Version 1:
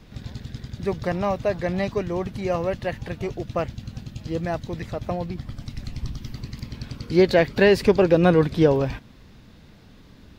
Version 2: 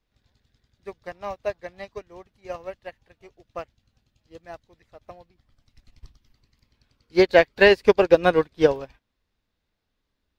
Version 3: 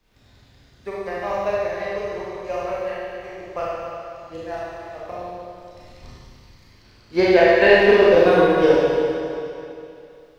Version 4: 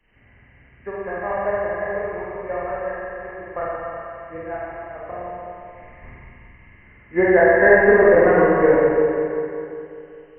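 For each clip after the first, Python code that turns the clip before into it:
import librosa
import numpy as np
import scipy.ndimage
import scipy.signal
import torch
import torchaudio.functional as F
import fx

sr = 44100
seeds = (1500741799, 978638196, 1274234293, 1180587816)

y1 = fx.peak_eq(x, sr, hz=160.0, db=-12.0, octaves=2.0)
y1 = fx.upward_expand(y1, sr, threshold_db=-37.0, expansion=2.5)
y1 = y1 * 10.0 ** (7.0 / 20.0)
y2 = fx.rev_schroeder(y1, sr, rt60_s=1.9, comb_ms=25, drr_db=-8.0)
y2 = fx.band_squash(y2, sr, depth_pct=40)
y2 = y2 * 10.0 ** (-2.5 / 20.0)
y3 = fx.freq_compress(y2, sr, knee_hz=1600.0, ratio=4.0)
y3 = fx.echo_feedback(y3, sr, ms=174, feedback_pct=51, wet_db=-8.5)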